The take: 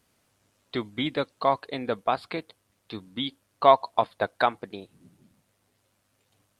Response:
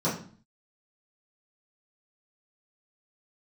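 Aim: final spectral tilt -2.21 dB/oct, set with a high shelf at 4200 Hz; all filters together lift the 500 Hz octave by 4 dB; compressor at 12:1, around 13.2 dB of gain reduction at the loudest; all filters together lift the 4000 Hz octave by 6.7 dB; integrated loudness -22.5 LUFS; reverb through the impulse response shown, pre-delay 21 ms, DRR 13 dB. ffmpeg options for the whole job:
-filter_complex "[0:a]equalizer=f=500:t=o:g=5.5,equalizer=f=4k:t=o:g=4,highshelf=f=4.2k:g=8,acompressor=threshold=-21dB:ratio=12,asplit=2[a][b];[1:a]atrim=start_sample=2205,adelay=21[c];[b][c]afir=irnorm=-1:irlink=0,volume=-24dB[d];[a][d]amix=inputs=2:normalize=0,volume=7dB"

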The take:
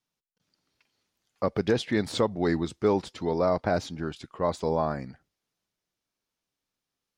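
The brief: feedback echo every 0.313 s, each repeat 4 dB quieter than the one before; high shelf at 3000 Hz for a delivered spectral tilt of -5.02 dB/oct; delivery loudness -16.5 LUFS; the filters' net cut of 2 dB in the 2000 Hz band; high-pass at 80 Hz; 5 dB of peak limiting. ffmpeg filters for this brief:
-af "highpass=80,equalizer=f=2k:t=o:g=-5,highshelf=f=3k:g=7.5,alimiter=limit=-15.5dB:level=0:latency=1,aecho=1:1:313|626|939|1252|1565|1878|2191|2504|2817:0.631|0.398|0.25|0.158|0.0994|0.0626|0.0394|0.0249|0.0157,volume=12dB"

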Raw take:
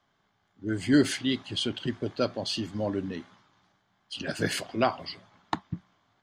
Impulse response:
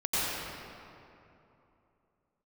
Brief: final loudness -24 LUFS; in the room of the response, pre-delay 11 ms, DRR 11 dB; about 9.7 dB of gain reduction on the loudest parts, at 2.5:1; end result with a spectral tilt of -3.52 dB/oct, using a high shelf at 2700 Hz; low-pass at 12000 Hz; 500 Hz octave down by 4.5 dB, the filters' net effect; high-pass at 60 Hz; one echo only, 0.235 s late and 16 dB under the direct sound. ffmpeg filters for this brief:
-filter_complex "[0:a]highpass=60,lowpass=12k,equalizer=f=500:t=o:g=-6.5,highshelf=f=2.7k:g=7,acompressor=threshold=-32dB:ratio=2.5,aecho=1:1:235:0.158,asplit=2[a][b];[1:a]atrim=start_sample=2205,adelay=11[c];[b][c]afir=irnorm=-1:irlink=0,volume=-22.5dB[d];[a][d]amix=inputs=2:normalize=0,volume=11dB"

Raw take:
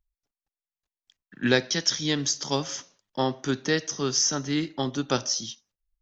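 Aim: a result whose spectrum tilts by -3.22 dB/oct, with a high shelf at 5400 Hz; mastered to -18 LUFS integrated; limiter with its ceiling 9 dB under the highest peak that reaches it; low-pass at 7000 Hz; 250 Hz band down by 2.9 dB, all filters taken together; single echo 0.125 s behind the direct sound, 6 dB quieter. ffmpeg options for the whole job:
-af "lowpass=7k,equalizer=f=250:t=o:g=-3.5,highshelf=f=5.4k:g=-3,alimiter=limit=-17dB:level=0:latency=1,aecho=1:1:125:0.501,volume=11dB"

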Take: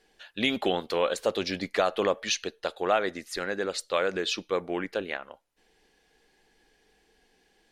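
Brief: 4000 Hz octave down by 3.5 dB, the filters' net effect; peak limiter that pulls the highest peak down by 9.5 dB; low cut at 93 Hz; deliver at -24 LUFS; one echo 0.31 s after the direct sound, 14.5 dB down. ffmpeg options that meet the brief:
-af "highpass=93,equalizer=f=4k:t=o:g=-4.5,alimiter=limit=-21dB:level=0:latency=1,aecho=1:1:310:0.188,volume=9.5dB"

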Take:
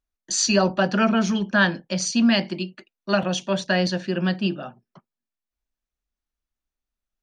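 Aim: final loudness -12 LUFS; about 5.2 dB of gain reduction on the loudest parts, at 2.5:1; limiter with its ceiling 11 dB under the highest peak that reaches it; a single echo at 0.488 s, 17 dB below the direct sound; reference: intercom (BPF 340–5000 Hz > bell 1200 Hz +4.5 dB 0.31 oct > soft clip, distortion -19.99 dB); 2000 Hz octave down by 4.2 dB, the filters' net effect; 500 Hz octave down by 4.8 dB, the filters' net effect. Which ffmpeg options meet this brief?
-af "equalizer=f=500:t=o:g=-5,equalizer=f=2k:t=o:g=-6,acompressor=threshold=-23dB:ratio=2.5,alimiter=limit=-22.5dB:level=0:latency=1,highpass=340,lowpass=5k,equalizer=f=1.2k:t=o:w=0.31:g=4.5,aecho=1:1:488:0.141,asoftclip=threshold=-26dB,volume=25dB"

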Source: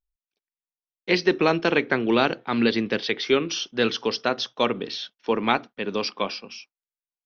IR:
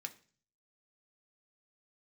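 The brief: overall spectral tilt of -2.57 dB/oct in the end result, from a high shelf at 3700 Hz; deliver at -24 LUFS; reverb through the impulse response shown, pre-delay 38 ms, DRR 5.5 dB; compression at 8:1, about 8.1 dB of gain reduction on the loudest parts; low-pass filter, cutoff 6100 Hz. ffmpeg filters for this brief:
-filter_complex "[0:a]lowpass=6.1k,highshelf=f=3.7k:g=-5.5,acompressor=threshold=-23dB:ratio=8,asplit=2[a][b];[1:a]atrim=start_sample=2205,adelay=38[c];[b][c]afir=irnorm=-1:irlink=0,volume=-2.5dB[d];[a][d]amix=inputs=2:normalize=0,volume=5dB"

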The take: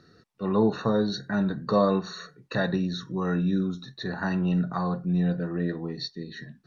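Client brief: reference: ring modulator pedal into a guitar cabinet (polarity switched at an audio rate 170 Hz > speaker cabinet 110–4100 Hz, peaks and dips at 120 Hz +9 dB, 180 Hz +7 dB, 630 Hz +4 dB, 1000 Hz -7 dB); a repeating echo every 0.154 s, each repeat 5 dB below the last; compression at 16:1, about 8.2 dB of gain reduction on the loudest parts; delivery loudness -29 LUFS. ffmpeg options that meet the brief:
-af "acompressor=threshold=-24dB:ratio=16,aecho=1:1:154|308|462|616|770|924|1078:0.562|0.315|0.176|0.0988|0.0553|0.031|0.0173,aeval=exprs='val(0)*sgn(sin(2*PI*170*n/s))':c=same,highpass=110,equalizer=f=120:t=q:w=4:g=9,equalizer=f=180:t=q:w=4:g=7,equalizer=f=630:t=q:w=4:g=4,equalizer=f=1k:t=q:w=4:g=-7,lowpass=f=4.1k:w=0.5412,lowpass=f=4.1k:w=1.3066,volume=1dB"

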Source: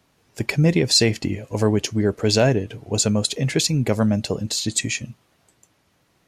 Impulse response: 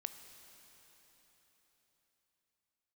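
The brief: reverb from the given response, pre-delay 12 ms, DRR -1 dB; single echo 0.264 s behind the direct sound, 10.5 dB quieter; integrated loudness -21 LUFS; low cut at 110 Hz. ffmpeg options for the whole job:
-filter_complex "[0:a]highpass=110,aecho=1:1:264:0.299,asplit=2[a][b];[1:a]atrim=start_sample=2205,adelay=12[c];[b][c]afir=irnorm=-1:irlink=0,volume=3.5dB[d];[a][d]amix=inputs=2:normalize=0,volume=-3.5dB"

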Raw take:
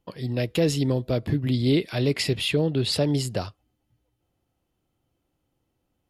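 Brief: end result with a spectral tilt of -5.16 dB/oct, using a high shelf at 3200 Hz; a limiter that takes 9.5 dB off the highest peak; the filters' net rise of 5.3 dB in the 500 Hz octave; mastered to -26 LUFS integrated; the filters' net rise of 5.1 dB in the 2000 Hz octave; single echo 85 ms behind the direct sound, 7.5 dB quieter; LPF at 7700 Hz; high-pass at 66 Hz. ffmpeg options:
-af "highpass=66,lowpass=7.7k,equalizer=f=500:t=o:g=6,equalizer=f=2k:t=o:g=4.5,highshelf=f=3.2k:g=4.5,alimiter=limit=-16.5dB:level=0:latency=1,aecho=1:1:85:0.422,volume=-0.5dB"

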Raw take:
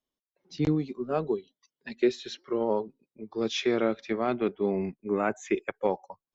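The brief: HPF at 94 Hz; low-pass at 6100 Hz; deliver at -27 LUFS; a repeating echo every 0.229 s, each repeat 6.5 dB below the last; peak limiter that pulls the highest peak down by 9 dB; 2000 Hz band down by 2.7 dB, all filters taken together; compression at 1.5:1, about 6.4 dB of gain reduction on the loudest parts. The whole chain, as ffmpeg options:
-af "highpass=94,lowpass=6.1k,equalizer=f=2k:t=o:g=-3.5,acompressor=threshold=-36dB:ratio=1.5,alimiter=level_in=2.5dB:limit=-24dB:level=0:latency=1,volume=-2.5dB,aecho=1:1:229|458|687|916|1145|1374:0.473|0.222|0.105|0.0491|0.0231|0.0109,volume=10.5dB"

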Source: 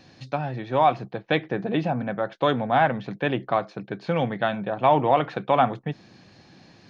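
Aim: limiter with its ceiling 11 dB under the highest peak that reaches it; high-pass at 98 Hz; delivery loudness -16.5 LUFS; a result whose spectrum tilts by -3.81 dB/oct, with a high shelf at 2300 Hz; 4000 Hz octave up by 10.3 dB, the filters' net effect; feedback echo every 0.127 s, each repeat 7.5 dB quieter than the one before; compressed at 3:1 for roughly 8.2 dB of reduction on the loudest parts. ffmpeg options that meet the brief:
-af "highpass=98,highshelf=f=2.3k:g=4.5,equalizer=f=4k:t=o:g=9,acompressor=threshold=-24dB:ratio=3,alimiter=limit=-20dB:level=0:latency=1,aecho=1:1:127|254|381|508|635:0.422|0.177|0.0744|0.0312|0.0131,volume=15.5dB"

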